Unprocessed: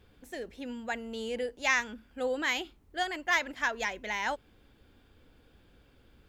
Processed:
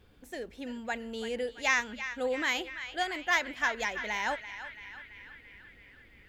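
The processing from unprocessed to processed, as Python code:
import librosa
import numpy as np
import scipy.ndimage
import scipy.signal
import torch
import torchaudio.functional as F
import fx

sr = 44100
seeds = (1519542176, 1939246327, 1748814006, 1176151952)

y = fx.echo_banded(x, sr, ms=335, feedback_pct=70, hz=2200.0, wet_db=-10.0)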